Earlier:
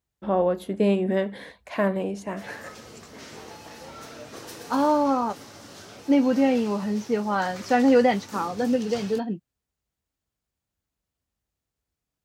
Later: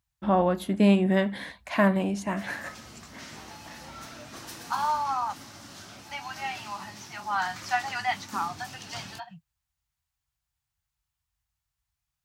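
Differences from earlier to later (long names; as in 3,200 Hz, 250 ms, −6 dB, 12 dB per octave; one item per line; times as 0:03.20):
first voice +4.5 dB
second voice: add inverse Chebyshev band-stop filter 220–500 Hz, stop band 40 dB
master: add parametric band 460 Hz −13.5 dB 0.57 octaves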